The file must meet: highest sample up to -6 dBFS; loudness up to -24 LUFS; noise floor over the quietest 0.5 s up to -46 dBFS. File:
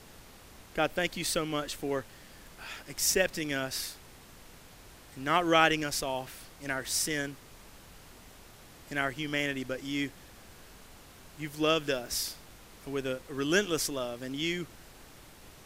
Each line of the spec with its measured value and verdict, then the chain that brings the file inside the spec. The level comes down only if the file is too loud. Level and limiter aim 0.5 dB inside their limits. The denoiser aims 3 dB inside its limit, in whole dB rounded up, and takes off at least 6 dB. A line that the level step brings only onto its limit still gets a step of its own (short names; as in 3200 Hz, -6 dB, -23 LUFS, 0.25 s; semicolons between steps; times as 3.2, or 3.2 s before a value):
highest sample -7.5 dBFS: OK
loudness -31.0 LUFS: OK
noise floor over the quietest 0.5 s -53 dBFS: OK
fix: none